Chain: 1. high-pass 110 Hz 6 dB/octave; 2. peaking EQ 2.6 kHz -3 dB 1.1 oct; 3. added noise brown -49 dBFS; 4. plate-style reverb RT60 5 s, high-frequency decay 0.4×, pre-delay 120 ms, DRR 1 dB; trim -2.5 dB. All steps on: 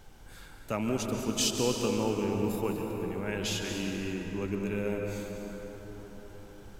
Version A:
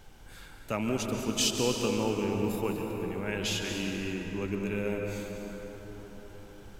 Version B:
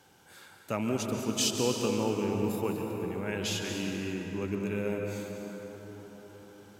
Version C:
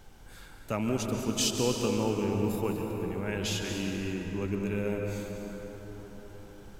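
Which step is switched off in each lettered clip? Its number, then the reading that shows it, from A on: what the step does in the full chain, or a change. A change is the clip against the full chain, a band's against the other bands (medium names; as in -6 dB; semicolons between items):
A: 2, 2 kHz band +2.0 dB; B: 3, momentary loudness spread change -1 LU; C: 1, 125 Hz band +2.5 dB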